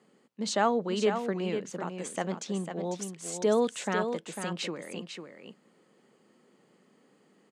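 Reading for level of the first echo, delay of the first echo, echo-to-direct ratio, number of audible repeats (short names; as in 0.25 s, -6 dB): -7.5 dB, 0.499 s, -7.5 dB, 1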